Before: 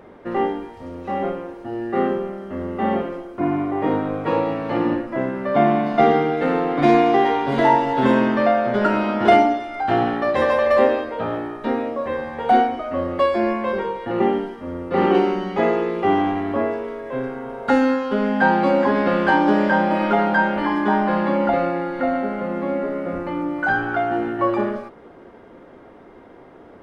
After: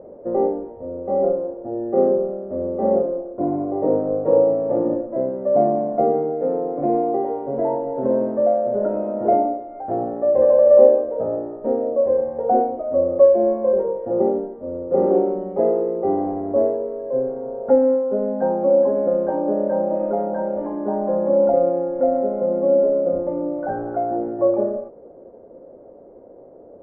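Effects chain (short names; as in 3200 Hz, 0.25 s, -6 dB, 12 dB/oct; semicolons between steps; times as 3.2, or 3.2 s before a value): vocal rider within 4 dB 2 s; synth low-pass 560 Hz, resonance Q 4.9; gain -7 dB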